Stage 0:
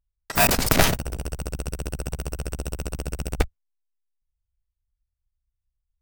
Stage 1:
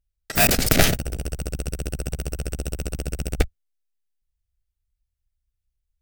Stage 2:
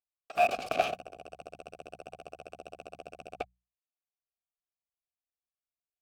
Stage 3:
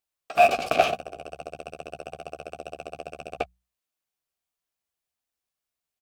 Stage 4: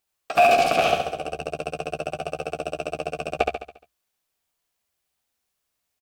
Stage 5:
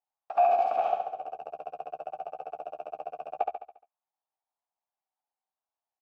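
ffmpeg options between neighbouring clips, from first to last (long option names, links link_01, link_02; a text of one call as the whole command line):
ffmpeg -i in.wav -af "equalizer=frequency=1000:width_type=o:width=0.46:gain=-14,volume=2dB" out.wav
ffmpeg -i in.wav -filter_complex "[0:a]asplit=3[link_01][link_02][link_03];[link_01]bandpass=frequency=730:width_type=q:width=8,volume=0dB[link_04];[link_02]bandpass=frequency=1090:width_type=q:width=8,volume=-6dB[link_05];[link_03]bandpass=frequency=2440:width_type=q:width=8,volume=-9dB[link_06];[link_04][link_05][link_06]amix=inputs=3:normalize=0,bandreject=frequency=60:width_type=h:width=6,bandreject=frequency=120:width_type=h:width=6,bandreject=frequency=180:width_type=h:width=6,volume=2dB" out.wav
ffmpeg -i in.wav -filter_complex "[0:a]asplit=2[link_01][link_02];[link_02]adelay=13,volume=-8.5dB[link_03];[link_01][link_03]amix=inputs=2:normalize=0,volume=7.5dB" out.wav
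ffmpeg -i in.wav -af "alimiter=limit=-14.5dB:level=0:latency=1:release=165,aecho=1:1:70|140|210|280|350|420:0.631|0.303|0.145|0.0698|0.0335|0.0161,volume=7dB" out.wav
ffmpeg -i in.wav -af "bandpass=frequency=830:width_type=q:width=5:csg=0" out.wav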